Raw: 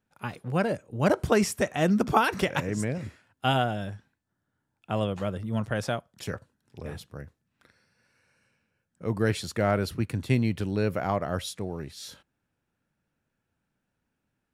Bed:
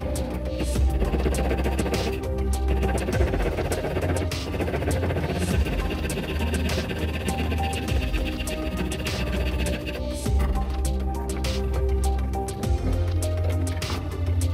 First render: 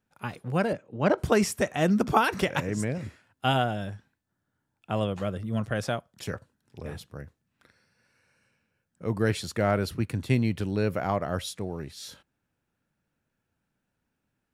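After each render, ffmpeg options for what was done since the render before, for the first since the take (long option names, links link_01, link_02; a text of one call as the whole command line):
ffmpeg -i in.wav -filter_complex "[0:a]asettb=1/sr,asplit=3[link_01][link_02][link_03];[link_01]atrim=end=0.734[link_04];[link_02]atrim=start=0.73:end=1.18,asetpts=PTS-STARTPTS,afade=type=in:duration=0.004:curve=qsin,afade=type=out:start_time=0.446:duration=0.004:curve=qsin,highpass=140,lowpass=4000[link_05];[link_03]atrim=start=1.176[link_06];[link_04][link_05]acrossfade=duration=0.004:curve1=hsin:curve2=qsin[link_07];[link_07][link_06]acrossfade=duration=0.004:curve1=qsin:curve2=hsin,asettb=1/sr,asplit=3[link_08][link_09][link_10];[link_08]atrim=end=5.214[link_11];[link_09]atrim=start=5.21:end=5.88,asetpts=PTS-STARTPTS,afade=type=in:duration=0.004:curve=qsin,afade=type=out:start_time=0.666:duration=0.004:curve=qsin,bandreject=frequency=910:width=7.9[link_12];[link_10]atrim=start=5.876[link_13];[link_11][link_12]acrossfade=duration=0.004:curve1=hsin:curve2=qsin[link_14];[link_14][link_13]acrossfade=duration=0.004:curve1=qsin:curve2=hsin" out.wav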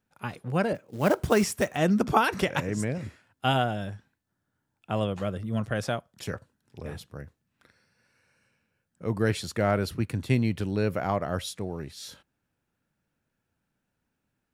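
ffmpeg -i in.wav -filter_complex "[0:a]asplit=3[link_01][link_02][link_03];[link_01]afade=type=out:start_time=0.74:duration=0.02[link_04];[link_02]acrusher=bits=5:mode=log:mix=0:aa=0.000001,afade=type=in:start_time=0.74:duration=0.02,afade=type=out:start_time=1.76:duration=0.02[link_05];[link_03]afade=type=in:start_time=1.76:duration=0.02[link_06];[link_04][link_05][link_06]amix=inputs=3:normalize=0" out.wav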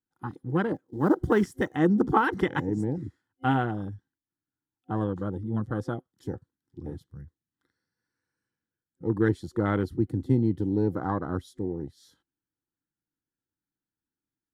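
ffmpeg -i in.wav -af "afwtdn=0.0251,superequalizer=6b=2.51:8b=0.316:12b=0.282" out.wav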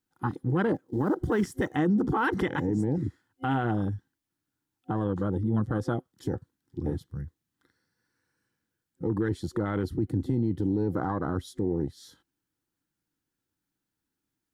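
ffmpeg -i in.wav -filter_complex "[0:a]asplit=2[link_01][link_02];[link_02]acompressor=threshold=-31dB:ratio=6,volume=2.5dB[link_03];[link_01][link_03]amix=inputs=2:normalize=0,alimiter=limit=-18dB:level=0:latency=1:release=25" out.wav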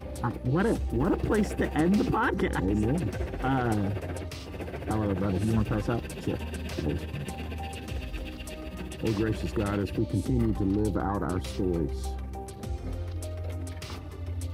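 ffmpeg -i in.wav -i bed.wav -filter_complex "[1:a]volume=-10.5dB[link_01];[0:a][link_01]amix=inputs=2:normalize=0" out.wav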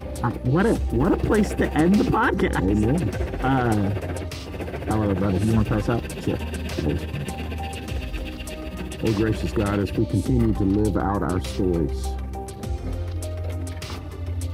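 ffmpeg -i in.wav -af "volume=6dB" out.wav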